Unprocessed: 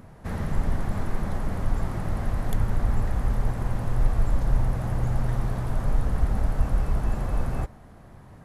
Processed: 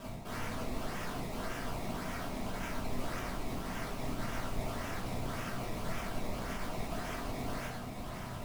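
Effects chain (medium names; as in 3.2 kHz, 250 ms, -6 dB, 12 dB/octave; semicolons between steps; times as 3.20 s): low-pass 2.2 kHz 6 dB/octave; tilt EQ +3.5 dB/octave; reverse; compression 16:1, threshold -46 dBFS, peak gain reduction 17.5 dB; reverse; decimation with a swept rate 20×, swing 100% 1.8 Hz; integer overflow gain 46 dB; modulation noise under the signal 12 dB; simulated room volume 300 m³, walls furnished, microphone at 5.4 m; loudspeaker Doppler distortion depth 0.22 ms; trim +1.5 dB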